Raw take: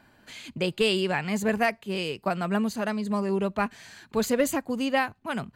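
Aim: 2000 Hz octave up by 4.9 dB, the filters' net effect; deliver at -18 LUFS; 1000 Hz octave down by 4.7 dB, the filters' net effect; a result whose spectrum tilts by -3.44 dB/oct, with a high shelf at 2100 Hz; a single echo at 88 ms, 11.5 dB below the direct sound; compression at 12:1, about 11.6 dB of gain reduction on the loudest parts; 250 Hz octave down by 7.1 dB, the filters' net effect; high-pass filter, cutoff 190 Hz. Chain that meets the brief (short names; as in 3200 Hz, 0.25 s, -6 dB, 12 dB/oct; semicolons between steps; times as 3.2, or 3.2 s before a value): HPF 190 Hz; bell 250 Hz -6.5 dB; bell 1000 Hz -9 dB; bell 2000 Hz +4.5 dB; high shelf 2100 Hz +7 dB; compressor 12:1, threshold -29 dBFS; echo 88 ms -11.5 dB; gain +16 dB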